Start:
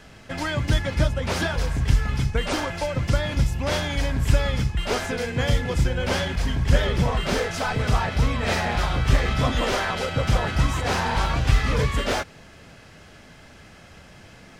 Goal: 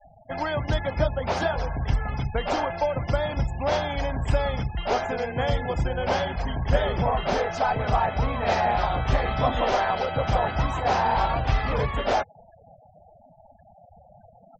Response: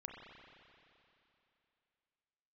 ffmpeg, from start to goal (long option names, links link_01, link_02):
-af "equalizer=frequency=750:width=1.5:gain=12.5,afftfilt=real='re*gte(hypot(re,im),0.0251)':imag='im*gte(hypot(re,im),0.0251)':win_size=1024:overlap=0.75,volume=-5dB"